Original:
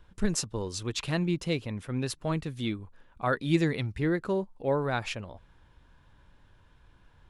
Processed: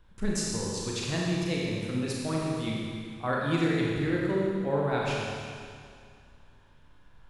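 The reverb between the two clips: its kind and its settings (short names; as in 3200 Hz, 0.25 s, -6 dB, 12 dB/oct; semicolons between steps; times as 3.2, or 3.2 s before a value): Schroeder reverb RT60 2.2 s, combs from 28 ms, DRR -4 dB; gain -4 dB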